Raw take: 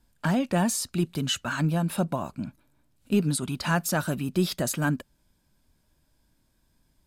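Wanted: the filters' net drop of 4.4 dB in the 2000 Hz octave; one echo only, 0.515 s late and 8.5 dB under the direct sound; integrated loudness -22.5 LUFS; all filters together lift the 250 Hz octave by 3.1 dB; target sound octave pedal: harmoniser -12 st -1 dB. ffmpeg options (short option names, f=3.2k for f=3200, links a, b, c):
-filter_complex "[0:a]equalizer=f=250:t=o:g=4.5,equalizer=f=2k:t=o:g=-6.5,aecho=1:1:515:0.376,asplit=2[a][b];[b]asetrate=22050,aresample=44100,atempo=2,volume=-1dB[c];[a][c]amix=inputs=2:normalize=0,volume=1dB"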